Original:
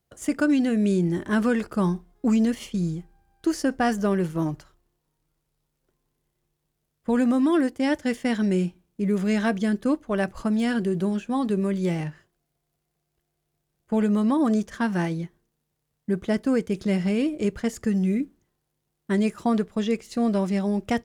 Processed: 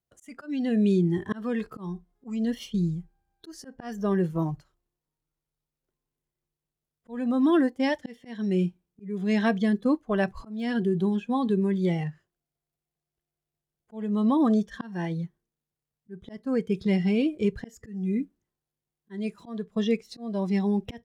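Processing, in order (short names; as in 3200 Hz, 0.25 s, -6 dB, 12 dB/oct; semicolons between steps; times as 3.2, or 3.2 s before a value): spectral noise reduction 12 dB; auto swell 0.374 s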